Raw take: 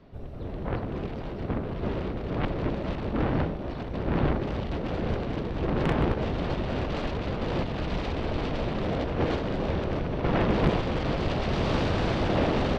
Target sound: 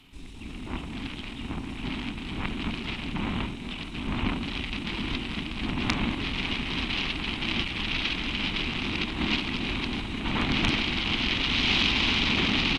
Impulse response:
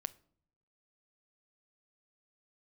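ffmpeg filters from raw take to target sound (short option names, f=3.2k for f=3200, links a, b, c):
-af "aexciter=amount=12.7:drive=5.5:freq=4k,asetrate=29433,aresample=44100,atempo=1.49831,equalizer=f=125:t=o:w=1:g=-5,equalizer=f=250:t=o:w=1:g=8,equalizer=f=500:t=o:w=1:g=-11,equalizer=f=1k:t=o:w=1:g=7,equalizer=f=2k:t=o:w=1:g=8,equalizer=f=4k:t=o:w=1:g=4,volume=-4dB"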